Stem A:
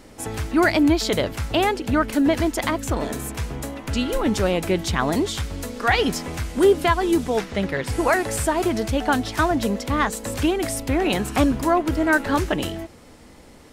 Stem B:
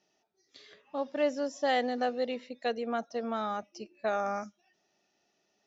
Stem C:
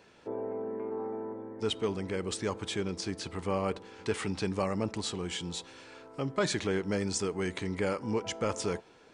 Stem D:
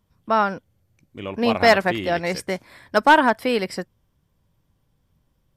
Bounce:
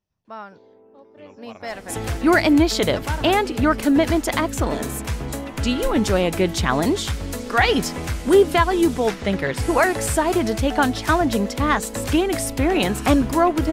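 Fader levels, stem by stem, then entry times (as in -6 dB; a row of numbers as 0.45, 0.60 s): +2.0, -16.5, -15.5, -17.0 dB; 1.70, 0.00, 0.25, 0.00 s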